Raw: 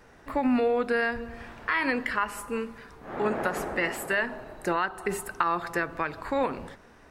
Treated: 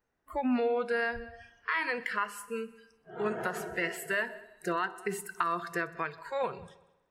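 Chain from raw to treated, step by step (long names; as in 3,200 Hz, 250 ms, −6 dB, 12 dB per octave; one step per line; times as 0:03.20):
noise reduction from a noise print of the clip's start 23 dB
echo machine with several playback heads 63 ms, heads all three, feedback 40%, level −24 dB
level −4 dB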